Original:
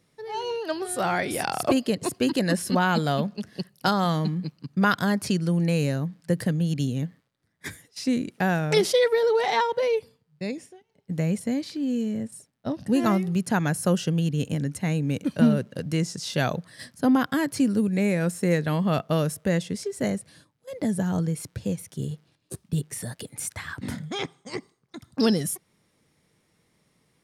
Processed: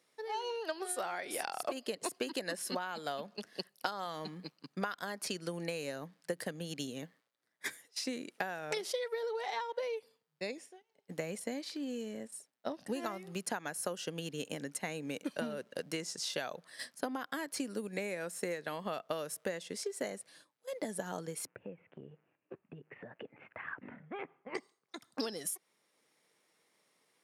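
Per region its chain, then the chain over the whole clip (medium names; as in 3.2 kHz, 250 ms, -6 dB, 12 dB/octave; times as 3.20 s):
21.46–24.55 s: Chebyshev low-pass 2.7 kHz, order 5 + tilt EQ -2 dB/octave + compression 3:1, threshold -33 dBFS
whole clip: high-pass 440 Hz 12 dB/octave; compression 10:1, threshold -31 dBFS; transient shaper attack +3 dB, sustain -2 dB; trim -3.5 dB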